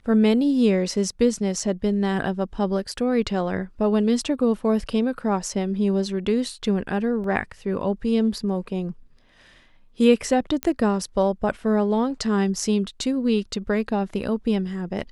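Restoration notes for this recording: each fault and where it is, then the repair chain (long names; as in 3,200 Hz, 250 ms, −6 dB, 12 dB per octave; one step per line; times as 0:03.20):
0:07.24: drop-out 2.3 ms
0:10.63: click −10 dBFS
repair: click removal
repair the gap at 0:07.24, 2.3 ms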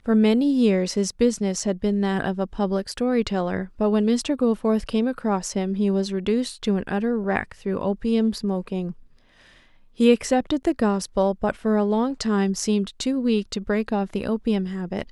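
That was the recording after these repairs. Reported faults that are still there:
none of them is left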